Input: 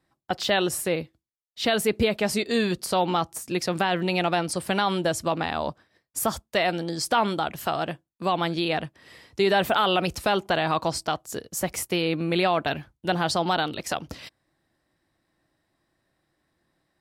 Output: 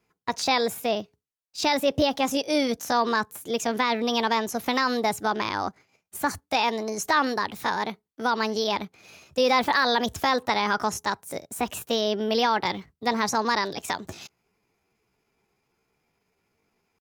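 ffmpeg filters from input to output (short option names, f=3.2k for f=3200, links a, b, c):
-filter_complex "[0:a]acrossover=split=6700[a][b];[b]acompressor=threshold=-39dB:ratio=4:attack=1:release=60[c];[a][c]amix=inputs=2:normalize=0,asetrate=57191,aresample=44100,atempo=0.771105"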